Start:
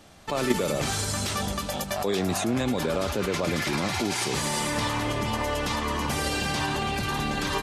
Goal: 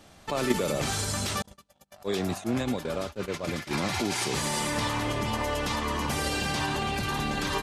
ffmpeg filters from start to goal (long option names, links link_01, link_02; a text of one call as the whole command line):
ffmpeg -i in.wav -filter_complex "[0:a]asettb=1/sr,asplit=3[link_01][link_02][link_03];[link_01]atrim=end=1.424[link_04];[link_02]atrim=start=1.42:end=3.71,asetpts=PTS-STARTPTS,afade=type=in:duration=0.004:curve=qsin,afade=type=out:start_time=2.286:duration=0.004:curve=qsin,agate=range=-43dB:threshold=-25dB:ratio=16:detection=peak[link_05];[link_03]atrim=start=3.706[link_06];[link_04][link_05]acrossfade=duration=0.004:curve1=hsin:curve2=qsin[link_07];[link_07][link_06]acrossfade=duration=0.004:curve1=qsin:curve2=hsin,volume=-1.5dB" out.wav